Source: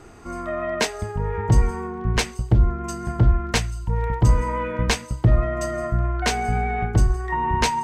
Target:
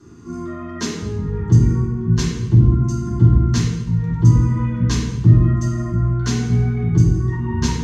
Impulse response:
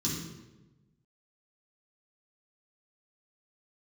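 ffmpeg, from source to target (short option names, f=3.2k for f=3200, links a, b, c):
-filter_complex "[1:a]atrim=start_sample=2205[a];[0:a][a]afir=irnorm=-1:irlink=0,volume=-9.5dB"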